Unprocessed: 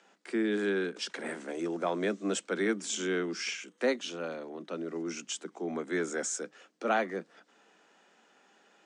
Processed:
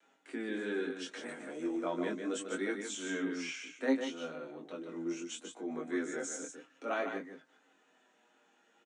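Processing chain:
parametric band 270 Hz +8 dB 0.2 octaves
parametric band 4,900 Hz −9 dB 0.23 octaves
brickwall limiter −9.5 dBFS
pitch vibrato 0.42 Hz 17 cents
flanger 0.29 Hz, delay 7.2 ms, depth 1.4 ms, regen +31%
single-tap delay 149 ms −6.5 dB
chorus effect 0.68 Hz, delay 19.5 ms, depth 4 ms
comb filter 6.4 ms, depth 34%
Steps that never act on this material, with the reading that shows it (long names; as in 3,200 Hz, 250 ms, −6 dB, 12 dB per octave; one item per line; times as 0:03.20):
brickwall limiter −9.5 dBFS: peak of its input −15.0 dBFS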